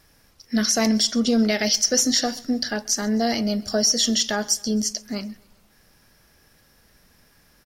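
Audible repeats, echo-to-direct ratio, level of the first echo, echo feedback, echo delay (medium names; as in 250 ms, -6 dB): 2, -22.5 dB, -24.0 dB, 53%, 131 ms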